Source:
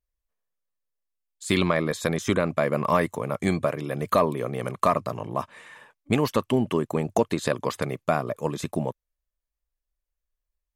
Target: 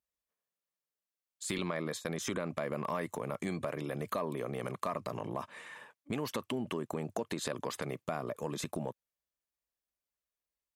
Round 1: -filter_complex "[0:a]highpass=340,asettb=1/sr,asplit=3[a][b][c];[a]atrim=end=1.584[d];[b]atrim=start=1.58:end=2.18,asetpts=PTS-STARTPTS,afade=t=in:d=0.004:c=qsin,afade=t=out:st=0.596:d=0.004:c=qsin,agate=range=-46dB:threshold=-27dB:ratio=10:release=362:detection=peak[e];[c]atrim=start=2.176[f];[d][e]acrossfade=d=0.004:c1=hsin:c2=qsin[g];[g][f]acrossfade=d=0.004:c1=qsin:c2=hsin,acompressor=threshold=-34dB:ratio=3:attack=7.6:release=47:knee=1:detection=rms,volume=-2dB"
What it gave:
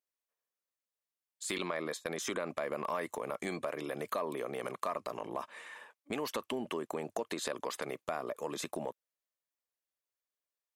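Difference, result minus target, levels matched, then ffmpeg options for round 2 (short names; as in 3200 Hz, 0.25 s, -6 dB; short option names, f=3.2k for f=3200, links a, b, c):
125 Hz band -9.0 dB
-filter_complex "[0:a]highpass=130,asettb=1/sr,asplit=3[a][b][c];[a]atrim=end=1.584[d];[b]atrim=start=1.58:end=2.18,asetpts=PTS-STARTPTS,afade=t=in:d=0.004:c=qsin,afade=t=out:st=0.596:d=0.004:c=qsin,agate=range=-46dB:threshold=-27dB:ratio=10:release=362:detection=peak[e];[c]atrim=start=2.176[f];[d][e]acrossfade=d=0.004:c1=hsin:c2=qsin[g];[g][f]acrossfade=d=0.004:c1=qsin:c2=hsin,acompressor=threshold=-34dB:ratio=3:attack=7.6:release=47:knee=1:detection=rms,volume=-2dB"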